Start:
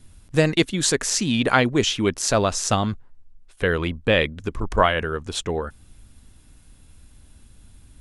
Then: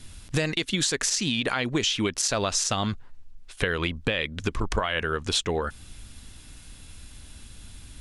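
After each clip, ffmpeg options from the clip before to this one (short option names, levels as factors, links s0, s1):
-af "equalizer=f=3900:w=0.41:g=8.5,alimiter=limit=0.376:level=0:latency=1:release=137,acompressor=threshold=0.0501:ratio=6,volume=1.5"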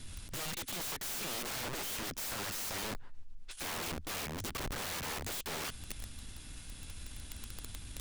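-af "aeval=exprs='(tanh(20*val(0)+0.55)-tanh(0.55))/20':c=same,aeval=exprs='(mod(59.6*val(0)+1,2)-1)/59.6':c=same,volume=1.12"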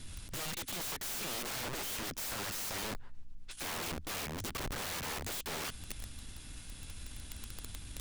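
-af "aeval=exprs='val(0)+0.000631*(sin(2*PI*60*n/s)+sin(2*PI*2*60*n/s)/2+sin(2*PI*3*60*n/s)/3+sin(2*PI*4*60*n/s)/4+sin(2*PI*5*60*n/s)/5)':c=same"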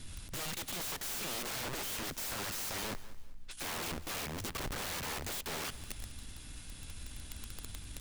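-af "aecho=1:1:196|392|588:0.126|0.0428|0.0146"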